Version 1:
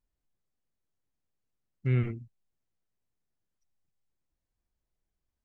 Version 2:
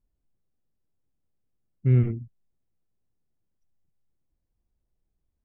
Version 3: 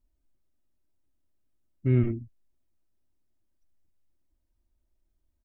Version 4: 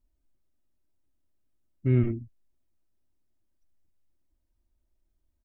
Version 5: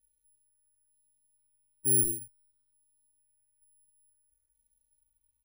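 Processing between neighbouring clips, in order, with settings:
tilt shelving filter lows +7.5 dB, about 840 Hz
comb filter 3.2 ms, depth 60%
no processing that can be heard
bad sample-rate conversion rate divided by 4×, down none, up zero stuff; step-sequenced phaser 2.2 Hz 260–2,200 Hz; level −8 dB

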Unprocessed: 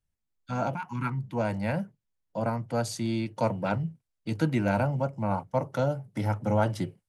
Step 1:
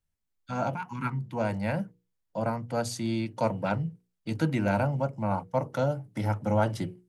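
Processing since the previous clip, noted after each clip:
mains-hum notches 60/120/180/240/300/360/420/480 Hz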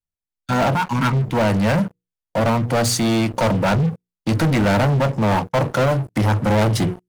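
leveller curve on the samples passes 5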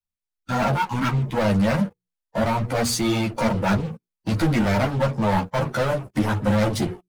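spectral magnitudes quantised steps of 15 dB
string-ensemble chorus

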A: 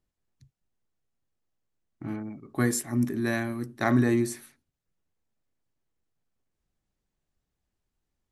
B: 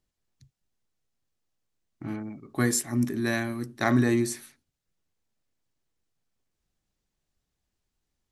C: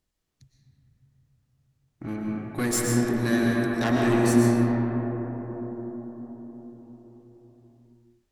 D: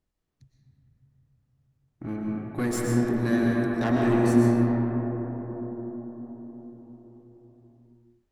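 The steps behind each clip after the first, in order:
parametric band 5,100 Hz +5 dB 2.1 octaves
tube saturation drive 23 dB, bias 0.45; convolution reverb RT60 5.0 s, pre-delay 80 ms, DRR −3 dB; level +3 dB
high-shelf EQ 2,200 Hz −9.5 dB

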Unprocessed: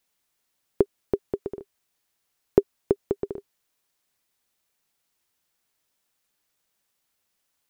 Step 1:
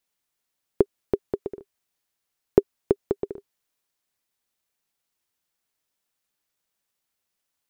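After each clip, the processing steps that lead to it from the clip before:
transient designer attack +6 dB, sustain +1 dB
level −5 dB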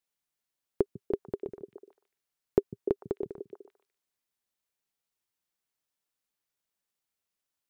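echo through a band-pass that steps 148 ms, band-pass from 150 Hz, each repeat 1.4 octaves, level −5.5 dB
level −7 dB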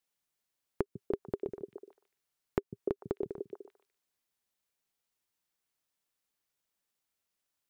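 downward compressor, threshold −30 dBFS, peak gain reduction 12.5 dB
level +1.5 dB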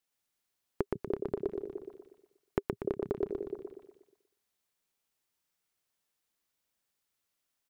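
repeating echo 120 ms, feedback 46%, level −3 dB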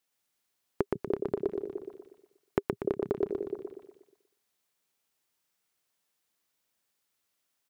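low-shelf EQ 62 Hz −11 dB
level +3.5 dB

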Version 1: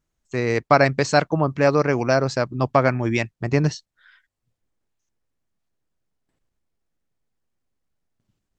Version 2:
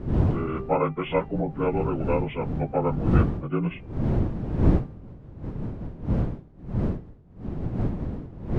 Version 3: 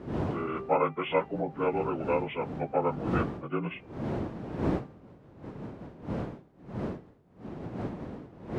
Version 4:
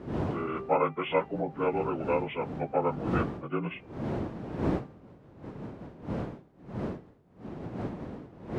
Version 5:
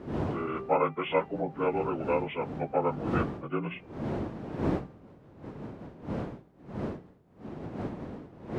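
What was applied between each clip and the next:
partials spread apart or drawn together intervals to 75%; wind on the microphone 190 Hz −21 dBFS; hum removal 394.2 Hz, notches 34; level −6 dB
high-pass filter 440 Hz 6 dB per octave
no processing that can be heard
mains-hum notches 60/120/180 Hz

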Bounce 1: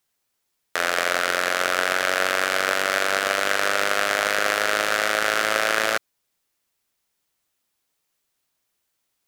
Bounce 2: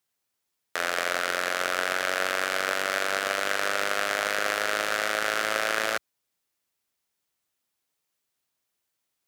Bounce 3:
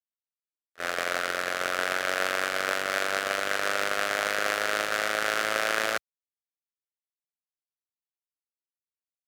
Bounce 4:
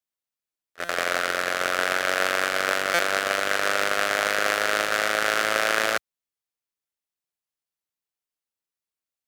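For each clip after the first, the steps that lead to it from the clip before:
high-pass filter 54 Hz; level −5 dB
noise gate −27 dBFS, range −35 dB
buffer that repeats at 0:00.84/0:02.94, samples 256, times 8; level +4 dB

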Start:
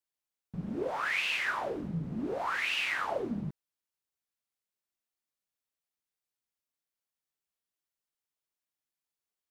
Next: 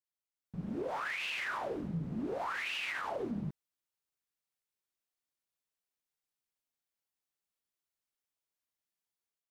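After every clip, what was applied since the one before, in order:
automatic gain control gain up to 7.5 dB
brickwall limiter −20 dBFS, peak gain reduction 8 dB
level −9 dB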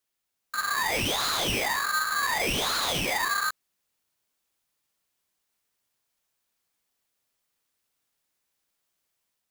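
in parallel at −6.5 dB: wave folding −38.5 dBFS
on the sum: ring modulator with a square carrier 1,400 Hz
level +9 dB

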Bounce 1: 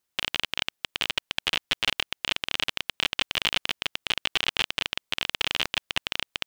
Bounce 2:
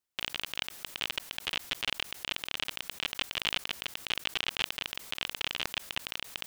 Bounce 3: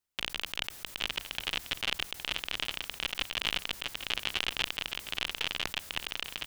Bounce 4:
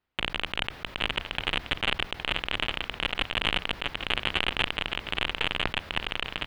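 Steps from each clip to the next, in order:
level that may fall only so fast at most 64 dB per second; level −7.5 dB
sub-octave generator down 2 octaves, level +2 dB; on a send: single-tap delay 815 ms −10 dB
high-frequency loss of the air 370 metres; in parallel at −4 dB: soft clipping −31.5 dBFS, distortion −5 dB; on the sum: level +8.5 dB

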